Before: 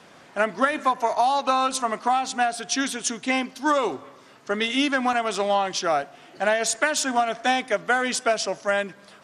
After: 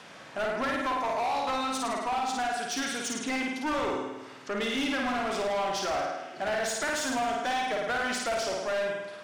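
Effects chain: in parallel at -0.5 dB: compression, threshold -30 dBFS, peak gain reduction 14.5 dB; on the sum: flutter echo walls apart 9.1 m, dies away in 0.96 s; hard clipper -18 dBFS, distortion -9 dB; treble shelf 7.1 kHz -7 dB; tape noise reduction on one side only encoder only; trim -8 dB

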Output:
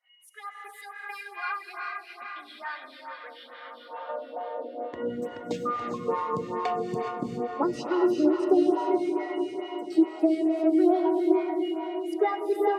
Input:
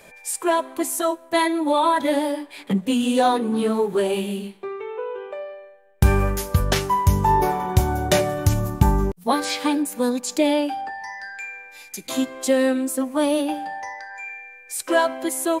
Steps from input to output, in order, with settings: expander on every frequency bin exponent 1.5; high-pass 93 Hz; bass shelf 170 Hz +9 dB; compression, threshold -22 dBFS, peak gain reduction 14.5 dB; echo that smears into a reverb 816 ms, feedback 47%, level -7.5 dB; high-pass sweep 1.5 kHz -> 270 Hz, 4.18–5.97 s; wide varispeed 1.22×; tape spacing loss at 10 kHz 23 dB; gated-style reverb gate 440 ms rising, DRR 2 dB; lamp-driven phase shifter 2.3 Hz

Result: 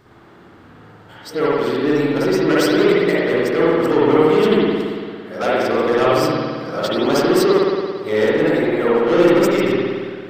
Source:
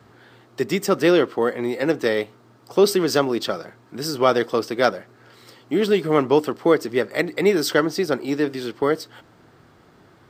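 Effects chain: reverse the whole clip; saturation -15.5 dBFS, distortion -11 dB; spring tank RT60 1.9 s, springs 56 ms, chirp 40 ms, DRR -7.5 dB

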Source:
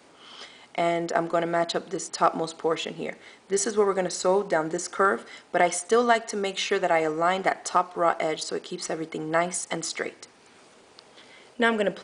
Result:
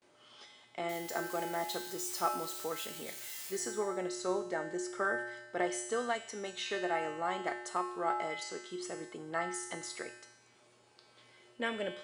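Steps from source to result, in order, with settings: 0.89–3.57 s: zero-crossing glitches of -23.5 dBFS; gate with hold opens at -46 dBFS; feedback comb 120 Hz, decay 0.97 s, harmonics odd, mix 90%; trim +5 dB

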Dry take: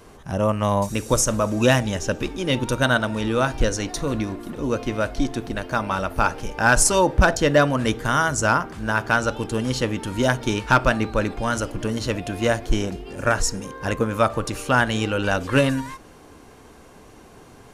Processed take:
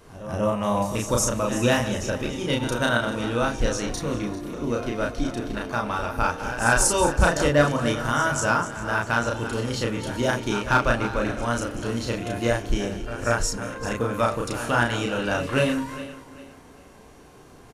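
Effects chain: backward echo that repeats 198 ms, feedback 55%, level -12 dB; doubling 34 ms -2 dB; pre-echo 190 ms -13 dB; trim -5 dB

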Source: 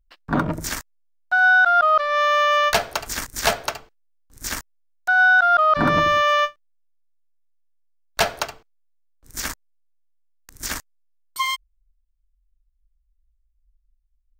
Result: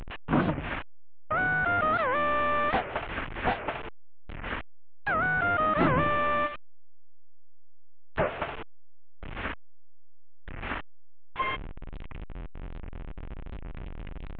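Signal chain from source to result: one-bit delta coder 16 kbps, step -28.5 dBFS; warped record 78 rpm, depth 250 cents; trim -2.5 dB

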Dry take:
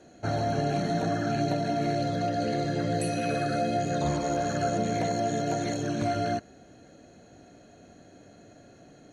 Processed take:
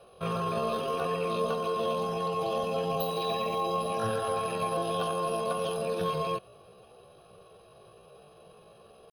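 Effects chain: static phaser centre 910 Hz, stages 8; pitch shift +7.5 st; trim +2.5 dB

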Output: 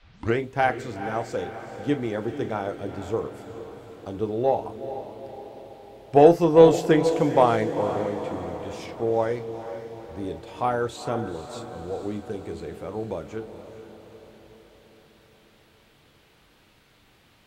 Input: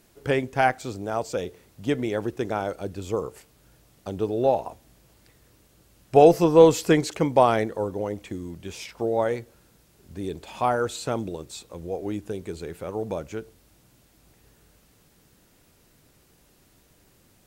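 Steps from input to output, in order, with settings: tape start-up on the opening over 0.37 s; treble shelf 4.8 kHz -8 dB; band-stop 2.5 kHz, Q 24; band noise 450–4000 Hz -62 dBFS; Chebyshev shaper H 7 -32 dB, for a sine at 1.5 dBFS; echo that smears into a reverb 453 ms, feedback 56%, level -10.5 dB; reverberation, pre-delay 3 ms, DRR 10 dB

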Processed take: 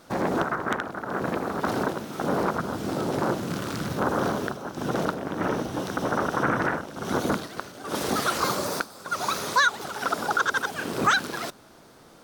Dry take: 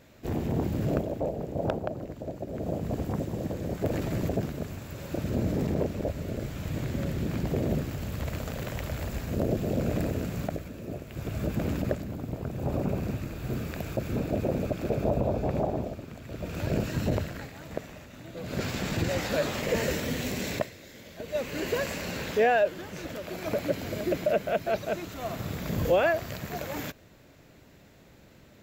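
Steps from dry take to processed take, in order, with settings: speed mistake 33 rpm record played at 78 rpm; trim +3 dB

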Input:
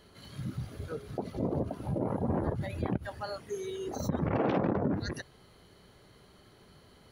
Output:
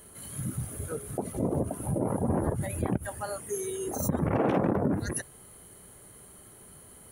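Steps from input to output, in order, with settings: resonant high shelf 6.6 kHz +13.5 dB, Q 3; trim +3 dB

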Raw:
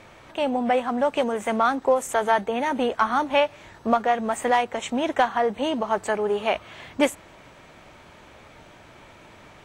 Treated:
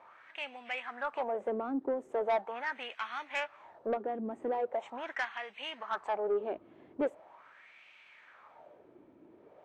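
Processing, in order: wah-wah 0.41 Hz 300–2600 Hz, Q 3.5; saturation -24 dBFS, distortion -14 dB

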